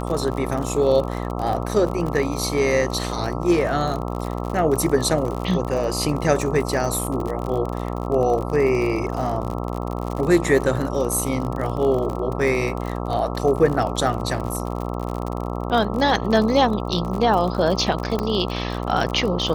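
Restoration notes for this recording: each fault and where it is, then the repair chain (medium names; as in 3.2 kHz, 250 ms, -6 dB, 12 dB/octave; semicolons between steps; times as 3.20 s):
buzz 60 Hz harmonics 22 -27 dBFS
crackle 49 per s -26 dBFS
18.19 s: pop -11 dBFS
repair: de-click; de-hum 60 Hz, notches 22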